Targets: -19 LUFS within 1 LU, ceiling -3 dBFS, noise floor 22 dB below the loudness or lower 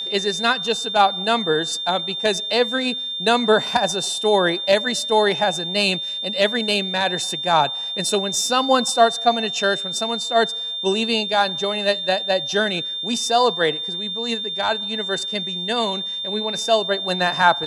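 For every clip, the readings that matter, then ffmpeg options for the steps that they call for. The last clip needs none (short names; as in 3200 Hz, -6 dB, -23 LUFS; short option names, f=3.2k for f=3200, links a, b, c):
steady tone 3600 Hz; tone level -25 dBFS; loudness -20.0 LUFS; peak -2.0 dBFS; loudness target -19.0 LUFS
-> -af "bandreject=f=3.6k:w=30"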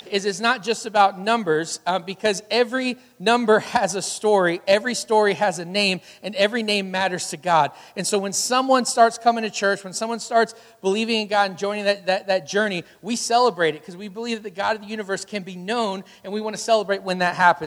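steady tone none; loudness -21.5 LUFS; peak -2.0 dBFS; loudness target -19.0 LUFS
-> -af "volume=2.5dB,alimiter=limit=-3dB:level=0:latency=1"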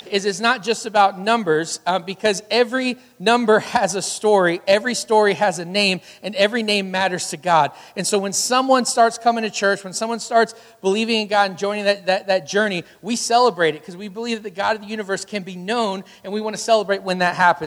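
loudness -19.5 LUFS; peak -3.0 dBFS; noise floor -46 dBFS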